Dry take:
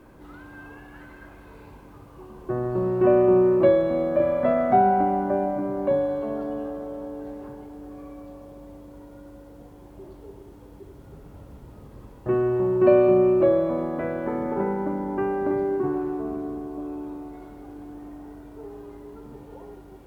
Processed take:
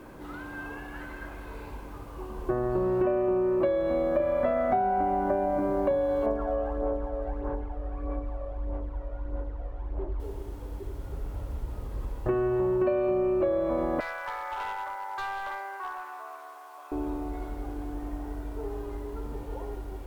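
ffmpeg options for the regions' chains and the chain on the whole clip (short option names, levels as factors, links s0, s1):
-filter_complex "[0:a]asettb=1/sr,asplit=3[s0][s1][s2];[s0]atrim=end=6.264[s3];[s1]atrim=start=6.26:end=10.2,asetpts=PTS-STARTPTS,afade=t=in:d=0.004:c=qsin,afade=t=out:st=3.936:d=0.004:c=qsin,lowpass=1800,equalizer=f=160:w=0.67:g=-7.5,aphaser=in_gain=1:out_gain=1:delay=1.7:decay=0.53:speed=1.6:type=sinusoidal[s4];[s2]atrim=start=10.196[s5];[s3][s4]acrossfade=d=0.004:c1=hsin:c2=qsin[s6];[s6][s5]acrossfade=d=0.004:c1=qsin:c2=hsin,asettb=1/sr,asplit=3[s7][s8][s9];[s7]atrim=end=14.004[s10];[s8]atrim=start=14:end=16.92,asetpts=PTS-STARTPTS,afade=t=in:d=0.004:c=qsin,afade=t=out:st=2.916:d=0.004:c=qsin,highpass=f=910:w=0.5412,highpass=f=910:w=1.3066,asoftclip=type=hard:threshold=0.0178[s11];[s9]atrim=start=16.916[s12];[s10][s11]acrossfade=d=0.004:c1=hsin:c2=qsin[s13];[s13][s12]acrossfade=d=0.004:c1=qsin:c2=hsin,asubboost=boost=9:cutoff=53,acompressor=threshold=0.0447:ratio=12,lowshelf=f=240:g=-4,volume=1.88"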